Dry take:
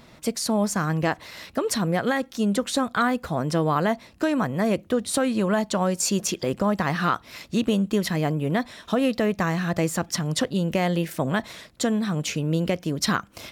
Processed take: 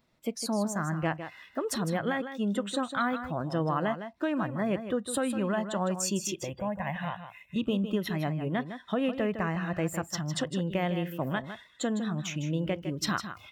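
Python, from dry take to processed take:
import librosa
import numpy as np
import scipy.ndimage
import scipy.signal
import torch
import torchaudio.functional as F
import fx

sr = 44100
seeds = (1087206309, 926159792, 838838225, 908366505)

p1 = fx.noise_reduce_blind(x, sr, reduce_db=15)
p2 = fx.fixed_phaser(p1, sr, hz=1300.0, stages=6, at=(6.44, 7.56))
p3 = p2 + fx.echo_single(p2, sr, ms=157, db=-10.0, dry=0)
y = F.gain(torch.from_numpy(p3), -6.5).numpy()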